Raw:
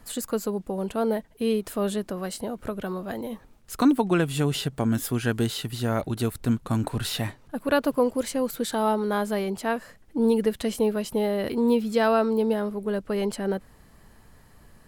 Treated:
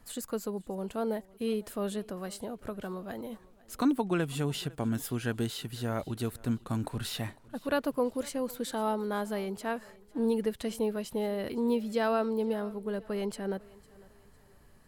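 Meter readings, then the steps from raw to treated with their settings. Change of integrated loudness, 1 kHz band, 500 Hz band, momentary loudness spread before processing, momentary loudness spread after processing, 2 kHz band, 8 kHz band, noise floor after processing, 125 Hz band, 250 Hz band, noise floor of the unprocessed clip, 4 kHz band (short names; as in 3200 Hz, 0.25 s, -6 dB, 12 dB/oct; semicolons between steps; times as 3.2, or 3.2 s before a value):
-7.0 dB, -7.0 dB, -7.0 dB, 10 LU, 10 LU, -7.0 dB, -7.0 dB, -59 dBFS, -7.0 dB, -7.0 dB, -54 dBFS, -7.0 dB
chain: thinning echo 0.503 s, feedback 40%, high-pass 160 Hz, level -22 dB; gain -7 dB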